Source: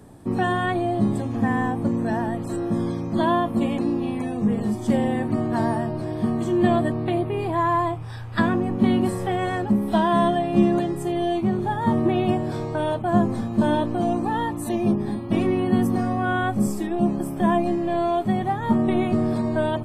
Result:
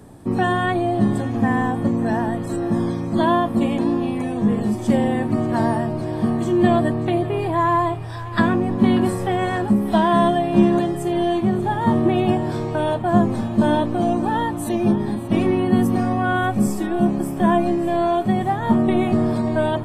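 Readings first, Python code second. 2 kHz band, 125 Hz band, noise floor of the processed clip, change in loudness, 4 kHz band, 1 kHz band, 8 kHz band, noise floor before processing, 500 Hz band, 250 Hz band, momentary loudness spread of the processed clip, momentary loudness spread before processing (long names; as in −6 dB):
+3.0 dB, +3.0 dB, −28 dBFS, +3.0 dB, +3.0 dB, +3.0 dB, can't be measured, −31 dBFS, +3.0 dB, +3.0 dB, 5 LU, 5 LU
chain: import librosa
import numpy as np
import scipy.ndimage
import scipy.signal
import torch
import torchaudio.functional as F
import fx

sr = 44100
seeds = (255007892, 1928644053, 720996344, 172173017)

y = fx.echo_thinned(x, sr, ms=588, feedback_pct=69, hz=420.0, wet_db=-16.0)
y = F.gain(torch.from_numpy(y), 3.0).numpy()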